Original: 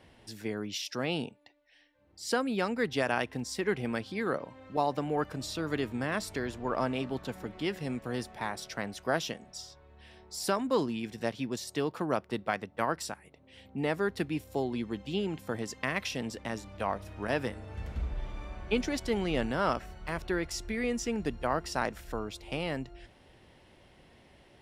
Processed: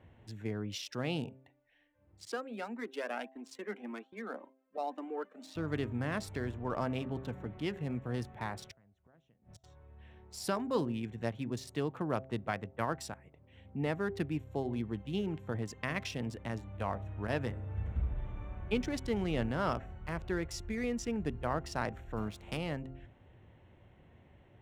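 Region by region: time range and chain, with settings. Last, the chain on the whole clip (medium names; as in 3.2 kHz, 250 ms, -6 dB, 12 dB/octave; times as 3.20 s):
2.25–5.56 s: steep high-pass 210 Hz 72 dB/octave + expander -40 dBFS + Shepard-style flanger rising 1.8 Hz
8.71–9.64 s: bass shelf 260 Hz +7.5 dB + compression 1.5:1, threshold -44 dBFS + inverted gate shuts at -35 dBFS, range -26 dB
22.16–22.56 s: spectral contrast reduction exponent 0.65 + peaking EQ 210 Hz +7 dB 0.39 oct
whole clip: local Wiener filter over 9 samples; peaking EQ 100 Hz +10.5 dB 1.3 oct; de-hum 131.9 Hz, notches 6; trim -4.5 dB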